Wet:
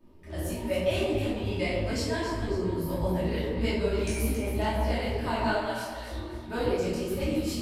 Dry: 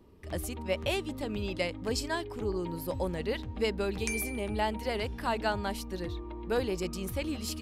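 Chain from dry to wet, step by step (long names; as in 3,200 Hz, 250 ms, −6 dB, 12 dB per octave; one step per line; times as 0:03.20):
0:05.50–0:06.11: Butterworth high-pass 560 Hz 48 dB per octave
on a send: delay that swaps between a low-pass and a high-pass 136 ms, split 1,300 Hz, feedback 63%, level −5 dB
on the sum: rectangular room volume 350 cubic metres, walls mixed, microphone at 2.7 metres
micro pitch shift up and down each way 57 cents
level −3 dB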